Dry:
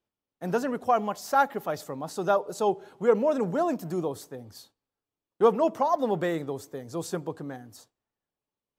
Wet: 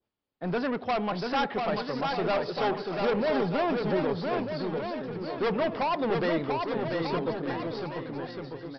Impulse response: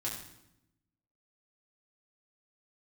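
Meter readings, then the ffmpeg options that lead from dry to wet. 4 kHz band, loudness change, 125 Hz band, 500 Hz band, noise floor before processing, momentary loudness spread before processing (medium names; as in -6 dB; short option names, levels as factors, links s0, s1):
+7.5 dB, -2.0 dB, +3.0 dB, -1.5 dB, under -85 dBFS, 14 LU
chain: -af "adynamicequalizer=threshold=0.00708:dfrequency=2400:dqfactor=0.91:tfrequency=2400:tqfactor=0.91:attack=5:release=100:ratio=0.375:range=3:mode=boostabove:tftype=bell,aresample=11025,asoftclip=type=tanh:threshold=0.0447,aresample=44100,aecho=1:1:690|1242|1684|2037|2320:0.631|0.398|0.251|0.158|0.1,volume=1.41"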